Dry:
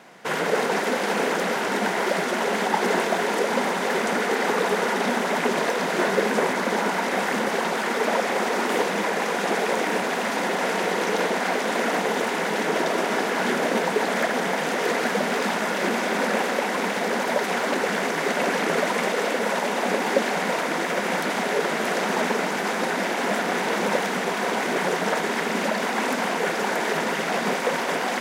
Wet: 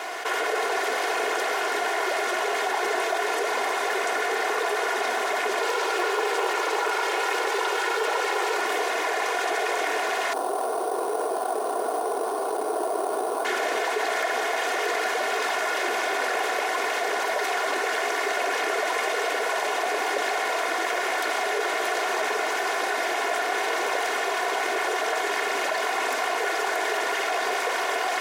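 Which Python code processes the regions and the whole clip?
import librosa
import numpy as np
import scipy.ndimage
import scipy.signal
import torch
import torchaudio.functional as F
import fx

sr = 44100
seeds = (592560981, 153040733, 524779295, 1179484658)

y = fx.chain(x, sr, fx.notch(hz=1800.0, q=16.0),
    fx.comb(ms=2.2, depth=0.87),
    fx.doppler_dist(depth_ms=0.51), at=(5.61, 8.57))
y = fx.chain(y, sr, fx.median_filter(points=25),
    fx.band_shelf(hz=3700.0, db=-13.0, octaves=2.4),
    fx.sample_hold(seeds[0], rate_hz=9700.0, jitter_pct=0), at=(10.33, 13.45))
y = scipy.signal.sosfilt(scipy.signal.butter(4, 420.0, 'highpass', fs=sr, output='sos'), y)
y = y + 0.64 * np.pad(y, (int(2.8 * sr / 1000.0), 0))[:len(y)]
y = fx.env_flatten(y, sr, amount_pct=70)
y = y * 10.0 ** (-7.5 / 20.0)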